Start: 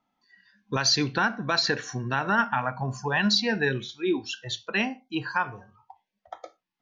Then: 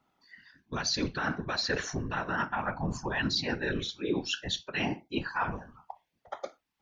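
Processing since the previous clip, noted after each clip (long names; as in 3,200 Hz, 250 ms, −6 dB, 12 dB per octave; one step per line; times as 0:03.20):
reversed playback
downward compressor 6 to 1, threshold −32 dBFS, peak gain reduction 13 dB
reversed playback
random phases in short frames
level +3.5 dB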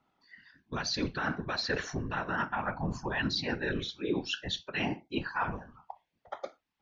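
low-pass filter 5,200 Hz 12 dB per octave
level −1 dB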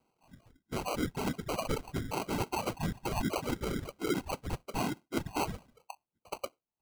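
decimation without filtering 25×
reverb reduction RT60 0.72 s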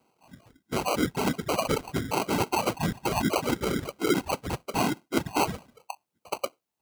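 high-pass filter 140 Hz 6 dB per octave
level +8 dB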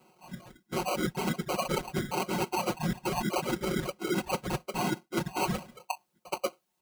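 comb filter 5.5 ms, depth 87%
reversed playback
downward compressor 5 to 1, threshold −33 dBFS, peak gain reduction 15.5 dB
reversed playback
level +4.5 dB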